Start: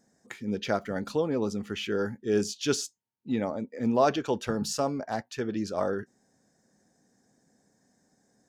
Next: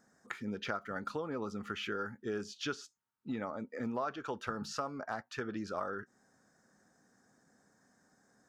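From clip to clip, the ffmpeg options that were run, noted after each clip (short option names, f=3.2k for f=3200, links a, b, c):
-filter_complex "[0:a]acrossover=split=5500[a][b];[b]acompressor=threshold=-50dB:ratio=4:attack=1:release=60[c];[a][c]amix=inputs=2:normalize=0,equalizer=f=1.3k:t=o:w=0.77:g=14.5,acompressor=threshold=-33dB:ratio=4,volume=-3dB"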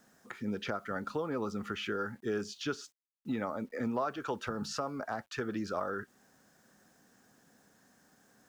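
-filter_complex "[0:a]acrossover=split=510|800[a][b][c];[c]alimiter=level_in=9.5dB:limit=-24dB:level=0:latency=1:release=155,volume=-9.5dB[d];[a][b][d]amix=inputs=3:normalize=0,acrusher=bits=11:mix=0:aa=0.000001,volume=3.5dB"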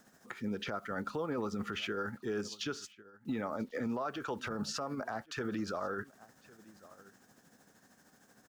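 -af "aecho=1:1:1101:0.0668,tremolo=f=13:d=0.5,alimiter=level_in=7dB:limit=-24dB:level=0:latency=1:release=16,volume=-7dB,volume=3.5dB"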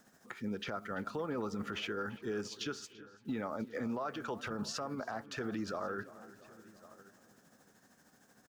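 -filter_complex "[0:a]asplit=2[a][b];[b]adelay=339,lowpass=f=3.2k:p=1,volume=-17dB,asplit=2[c][d];[d]adelay=339,lowpass=f=3.2k:p=1,volume=0.55,asplit=2[e][f];[f]adelay=339,lowpass=f=3.2k:p=1,volume=0.55,asplit=2[g][h];[h]adelay=339,lowpass=f=3.2k:p=1,volume=0.55,asplit=2[i][j];[j]adelay=339,lowpass=f=3.2k:p=1,volume=0.55[k];[a][c][e][g][i][k]amix=inputs=6:normalize=0,volume=-1.5dB"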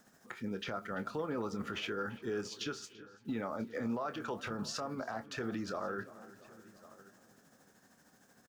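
-filter_complex "[0:a]asplit=2[a][b];[b]adelay=26,volume=-11.5dB[c];[a][c]amix=inputs=2:normalize=0"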